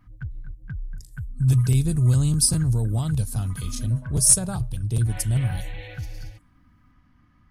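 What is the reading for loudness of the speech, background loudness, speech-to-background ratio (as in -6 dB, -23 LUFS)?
-21.5 LUFS, -37.5 LUFS, 16.0 dB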